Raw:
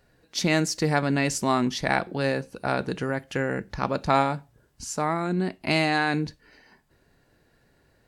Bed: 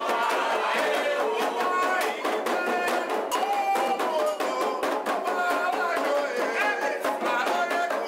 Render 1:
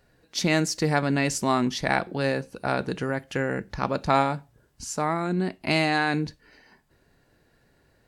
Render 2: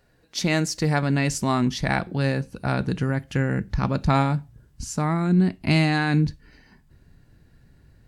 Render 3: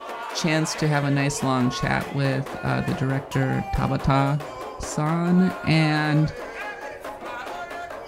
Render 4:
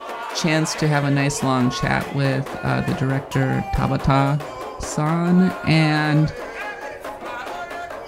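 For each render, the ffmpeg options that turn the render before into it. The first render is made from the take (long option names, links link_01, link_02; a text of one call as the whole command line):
ffmpeg -i in.wav -af anull out.wav
ffmpeg -i in.wav -af "asubboost=boost=5:cutoff=220" out.wav
ffmpeg -i in.wav -i bed.wav -filter_complex "[1:a]volume=-8dB[link_01];[0:a][link_01]amix=inputs=2:normalize=0" out.wav
ffmpeg -i in.wav -af "volume=3dB" out.wav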